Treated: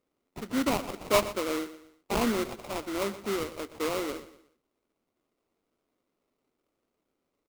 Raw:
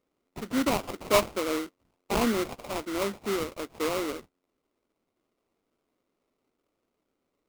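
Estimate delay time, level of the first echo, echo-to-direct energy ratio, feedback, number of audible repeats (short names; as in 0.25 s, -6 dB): 0.121 s, -15.0 dB, -14.5 dB, 37%, 3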